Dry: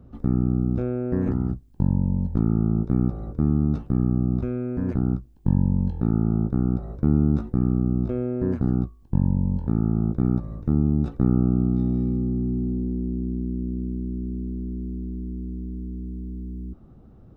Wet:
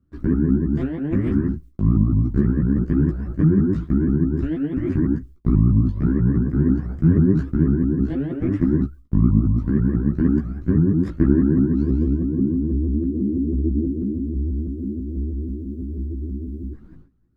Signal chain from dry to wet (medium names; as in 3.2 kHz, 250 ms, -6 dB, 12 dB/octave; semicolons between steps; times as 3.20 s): sawtooth pitch modulation +6 st, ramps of 163 ms; high-order bell 640 Hz -12.5 dB 1.3 oct; gate with hold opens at -40 dBFS; chorus voices 6, 0.61 Hz, delay 15 ms, depth 4.6 ms; trim +8 dB